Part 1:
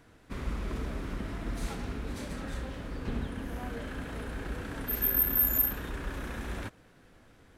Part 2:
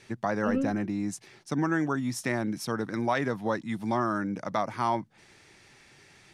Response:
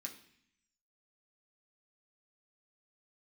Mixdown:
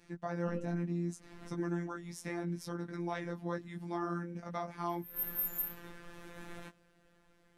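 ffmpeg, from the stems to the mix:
-filter_complex "[0:a]volume=0.75,asplit=2[s0][s1];[s1]volume=0.075[s2];[1:a]lowshelf=f=270:g=7.5,volume=0.562,asplit=2[s3][s4];[s4]apad=whole_len=334176[s5];[s0][s5]sidechaincompress=threshold=0.00141:ratio=8:attack=5.6:release=129[s6];[2:a]atrim=start_sample=2205[s7];[s2][s7]afir=irnorm=-1:irlink=0[s8];[s6][s3][s8]amix=inputs=3:normalize=0,flanger=delay=16.5:depth=3.5:speed=0.65,afftfilt=real='hypot(re,im)*cos(PI*b)':imag='0':win_size=1024:overlap=0.75"

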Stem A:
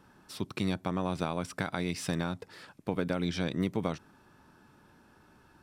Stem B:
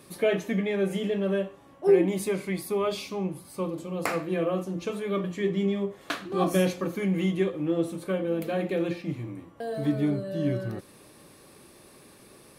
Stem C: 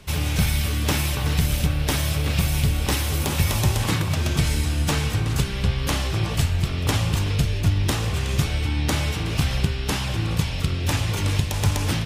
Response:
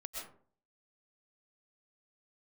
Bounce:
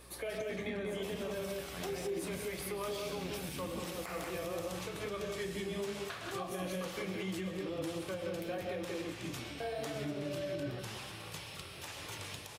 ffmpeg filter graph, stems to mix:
-filter_complex "[0:a]alimiter=level_in=1.19:limit=0.0631:level=0:latency=1,volume=0.841,aeval=exprs='val(0)+0.00316*(sin(2*PI*60*n/s)+sin(2*PI*2*60*n/s)/2+sin(2*PI*3*60*n/s)/3+sin(2*PI*4*60*n/s)/4+sin(2*PI*5*60*n/s)/5)':c=same,volume=0.422,asplit=2[s0][s1];[s1]volume=0.668[s2];[1:a]flanger=delay=5.9:depth=7.2:regen=-56:speed=1.5:shape=triangular,volume=1.06,asplit=3[s3][s4][s5];[s4]volume=0.422[s6];[s5]volume=0.422[s7];[2:a]highpass=94,adelay=950,volume=0.15,asplit=2[s8][s9];[s9]volume=0.501[s10];[s3][s8]amix=inputs=2:normalize=0,highpass=f=320:w=0.5412,highpass=f=320:w=1.3066,acompressor=threshold=0.0224:ratio=6,volume=1[s11];[3:a]atrim=start_sample=2205[s12];[s6][s10]amix=inputs=2:normalize=0[s13];[s13][s12]afir=irnorm=-1:irlink=0[s14];[s2][s7]amix=inputs=2:normalize=0,aecho=0:1:184:1[s15];[s0][s11][s14][s15]amix=inputs=4:normalize=0,alimiter=level_in=1.88:limit=0.0631:level=0:latency=1:release=174,volume=0.531"

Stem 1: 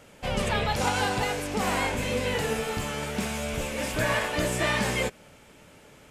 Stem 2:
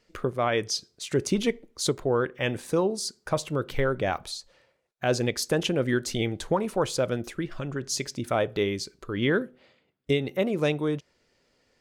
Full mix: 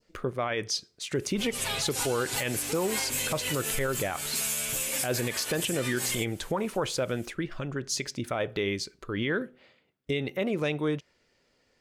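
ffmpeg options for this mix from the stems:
-filter_complex "[0:a]highshelf=f=9700:g=6.5,aecho=1:1:7.5:0.93,crystalizer=i=7:c=0,adelay=1150,volume=0.251[s0];[1:a]adynamicequalizer=threshold=0.01:dfrequency=2200:dqfactor=0.85:tfrequency=2200:tqfactor=0.85:attack=5:release=100:ratio=0.375:range=2.5:mode=boostabove:tftype=bell,volume=0.841,asplit=2[s1][s2];[s2]apad=whole_len=320075[s3];[s0][s3]sidechaincompress=threshold=0.0251:ratio=4:attack=7.8:release=144[s4];[s4][s1]amix=inputs=2:normalize=0,alimiter=limit=0.112:level=0:latency=1:release=49"

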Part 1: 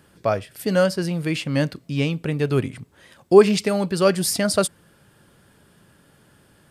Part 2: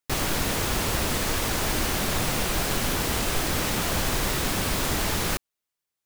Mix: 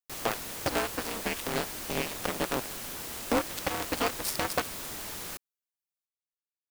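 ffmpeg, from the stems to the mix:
-filter_complex "[0:a]acompressor=threshold=0.0501:ratio=6,acrusher=bits=3:mix=0:aa=0.5,aeval=exprs='val(0)*sgn(sin(2*PI*120*n/s))':c=same,volume=1[s0];[1:a]highshelf=f=6500:g=7.5,volume=0.188[s1];[s0][s1]amix=inputs=2:normalize=0,lowshelf=f=150:g=-9.5"

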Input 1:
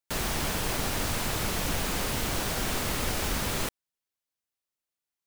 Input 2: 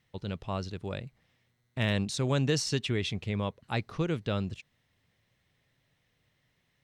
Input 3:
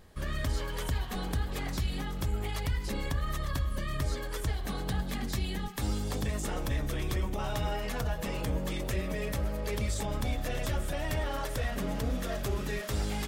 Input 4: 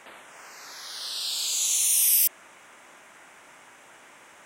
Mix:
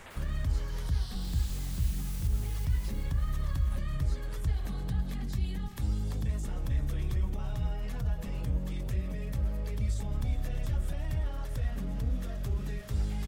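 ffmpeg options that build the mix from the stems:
-filter_complex "[0:a]asoftclip=type=hard:threshold=0.0251,volume=0.141[s0];[1:a]volume=0.15[s1];[2:a]volume=1.33,asplit=2[s2][s3];[s3]volume=0.112[s4];[3:a]alimiter=limit=0.15:level=0:latency=1,aeval=exprs='(mod(14.1*val(0)+1,2)-1)/14.1':c=same,volume=0.794,asplit=2[s5][s6];[s6]volume=0.473[s7];[s4][s7]amix=inputs=2:normalize=0,aecho=0:1:379|758|1137|1516|1895|2274:1|0.4|0.16|0.064|0.0256|0.0102[s8];[s0][s1][s2][s5][s8]amix=inputs=5:normalize=0,acrossover=split=180[s9][s10];[s10]acompressor=threshold=0.00562:ratio=10[s11];[s9][s11]amix=inputs=2:normalize=0"

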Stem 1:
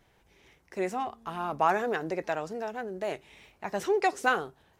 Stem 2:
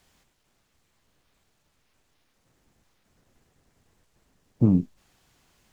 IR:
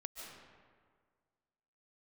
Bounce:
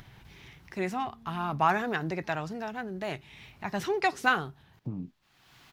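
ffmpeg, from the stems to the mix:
-filter_complex "[0:a]volume=1.33,asplit=2[s0][s1];[1:a]acompressor=threshold=0.0794:ratio=6,bass=f=250:g=-14,treble=f=4000:g=-5,adelay=250,volume=0.75[s2];[s1]apad=whole_len=263532[s3];[s2][s3]sidechaincompress=threshold=0.0282:ratio=8:attack=20:release=716[s4];[s0][s4]amix=inputs=2:normalize=0,equalizer=f=125:t=o:w=1:g=10,equalizer=f=500:t=o:w=1:g=-9,equalizer=f=4000:t=o:w=1:g=3,equalizer=f=8000:t=o:w=1:g=-7,acompressor=mode=upward:threshold=0.00708:ratio=2.5"

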